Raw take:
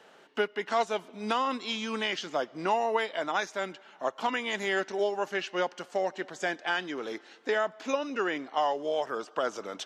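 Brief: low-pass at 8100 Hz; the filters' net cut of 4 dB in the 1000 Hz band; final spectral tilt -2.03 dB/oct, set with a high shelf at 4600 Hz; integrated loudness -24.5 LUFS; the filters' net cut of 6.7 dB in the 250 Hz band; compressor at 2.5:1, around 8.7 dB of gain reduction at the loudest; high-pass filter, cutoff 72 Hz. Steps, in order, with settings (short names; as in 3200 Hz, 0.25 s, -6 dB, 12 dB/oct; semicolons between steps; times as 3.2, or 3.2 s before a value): HPF 72 Hz; LPF 8100 Hz; bell 250 Hz -9 dB; bell 1000 Hz -5 dB; high shelf 4600 Hz +4 dB; compressor 2.5:1, threshold -39 dBFS; gain +16 dB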